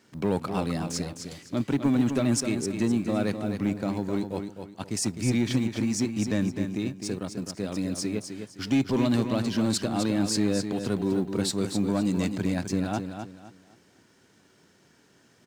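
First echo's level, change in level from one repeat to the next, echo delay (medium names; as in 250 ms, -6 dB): -7.5 dB, -11.0 dB, 257 ms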